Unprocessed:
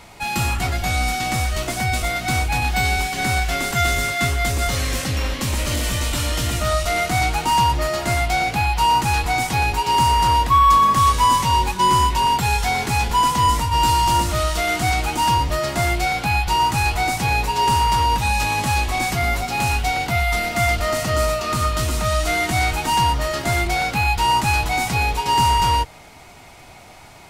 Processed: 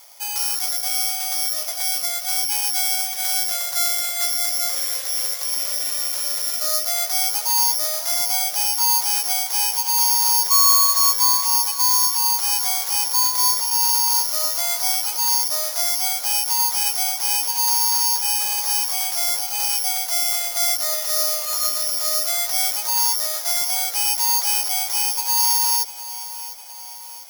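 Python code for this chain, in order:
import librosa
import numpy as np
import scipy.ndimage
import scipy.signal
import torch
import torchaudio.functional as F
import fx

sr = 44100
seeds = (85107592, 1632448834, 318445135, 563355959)

p1 = (np.kron(scipy.signal.resample_poly(x, 1, 8), np.eye(8)[0]) * 8)[:len(x)]
p2 = scipy.signal.sosfilt(scipy.signal.butter(12, 480.0, 'highpass', fs=sr, output='sos'), p1)
p3 = p2 + fx.echo_feedback(p2, sr, ms=702, feedback_pct=54, wet_db=-14.5, dry=0)
y = F.gain(torch.from_numpy(p3), -10.5).numpy()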